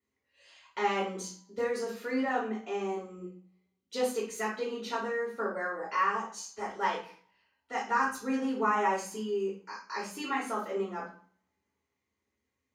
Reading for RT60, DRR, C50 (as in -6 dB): 0.50 s, -7.5 dB, 5.5 dB